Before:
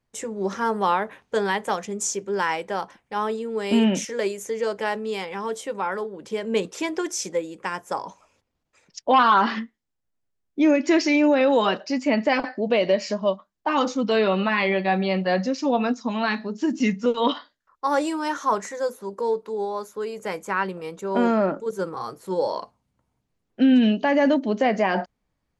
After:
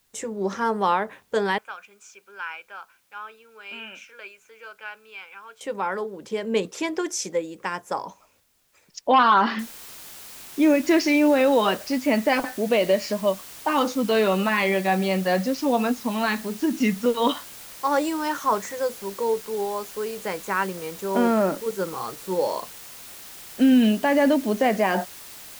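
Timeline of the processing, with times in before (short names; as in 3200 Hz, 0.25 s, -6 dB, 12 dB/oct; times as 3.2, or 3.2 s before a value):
1.58–5.61 double band-pass 1900 Hz, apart 0.7 oct
9.59 noise floor step -67 dB -42 dB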